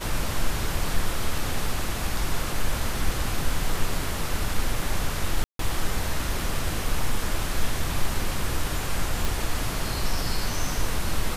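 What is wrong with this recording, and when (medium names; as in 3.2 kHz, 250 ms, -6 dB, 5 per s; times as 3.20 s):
5.44–5.59 s: dropout 153 ms
9.25 s: pop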